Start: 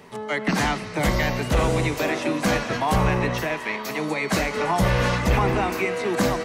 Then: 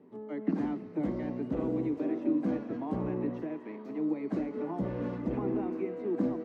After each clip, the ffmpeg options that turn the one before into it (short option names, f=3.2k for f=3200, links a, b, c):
-af "bandpass=f=290:t=q:w=3.5:csg=0"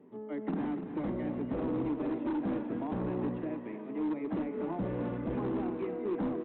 -af "aresample=8000,asoftclip=type=hard:threshold=-29dB,aresample=44100,aecho=1:1:295:0.316"